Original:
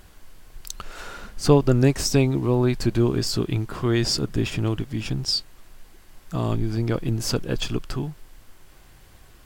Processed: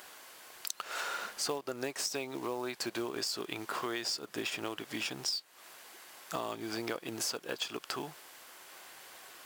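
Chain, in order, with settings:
high-pass filter 580 Hz 12 dB per octave
downward compressor 8 to 1, threshold −38 dBFS, peak gain reduction 20 dB
floating-point word with a short mantissa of 2 bits
level +5 dB

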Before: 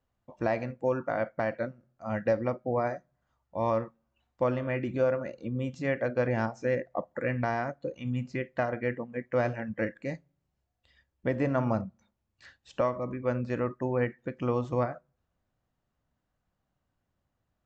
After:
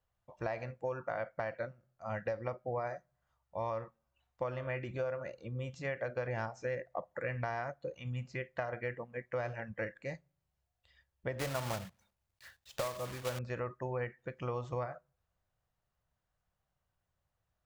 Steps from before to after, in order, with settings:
0:11.39–0:13.41: one scale factor per block 3 bits
parametric band 260 Hz −13 dB 0.89 octaves
downward compressor, threshold −30 dBFS, peak gain reduction 7 dB
level −2.5 dB

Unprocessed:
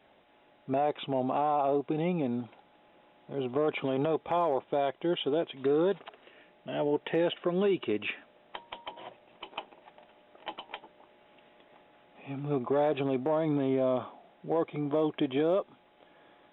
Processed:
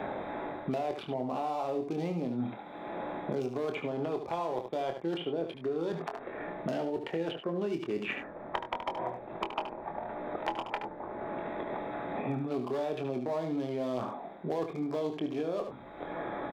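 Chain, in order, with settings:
adaptive Wiener filter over 15 samples
reversed playback
downward compressor 6 to 1, threshold −40 dBFS, peak gain reduction 15.5 dB
reversed playback
double-tracking delay 24 ms −6.5 dB
single-tap delay 73 ms −8.5 dB
multiband upward and downward compressor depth 100%
level +7.5 dB

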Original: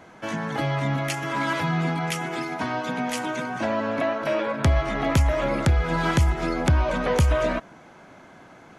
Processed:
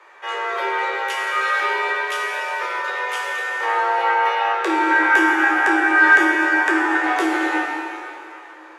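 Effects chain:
parametric band 1,400 Hz +8.5 dB 2.5 octaves
resonators tuned to a chord D2 sus4, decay 0.26 s
frequency shifter +250 Hz
0:04.91–0:07.04: thirty-one-band graphic EQ 500 Hz −7 dB, 800 Hz +4 dB, 1,600 Hz +11 dB, 4,000 Hz −7 dB
dense smooth reverb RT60 2.9 s, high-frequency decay 0.9×, DRR −1.5 dB
level +4.5 dB

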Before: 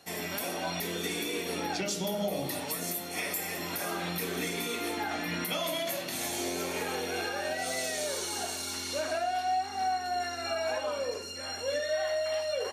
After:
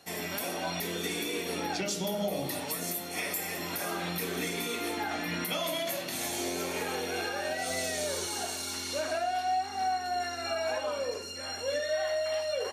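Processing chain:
0:07.70–0:08.27: low-shelf EQ 150 Hz +10 dB

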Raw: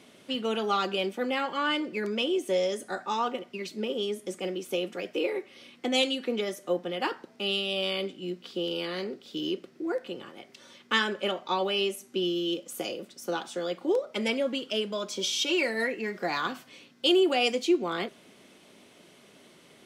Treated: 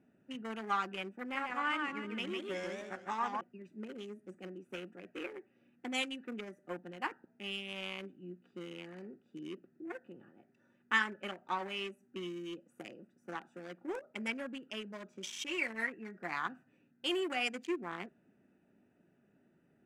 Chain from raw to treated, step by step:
adaptive Wiener filter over 41 samples
octave-band graphic EQ 500/1,000/2,000/4,000/8,000 Hz −9/+5/+9/−10/+5 dB
0:01.20–0:03.41: feedback echo with a swinging delay time 148 ms, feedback 38%, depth 176 cents, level −4 dB
level −8 dB

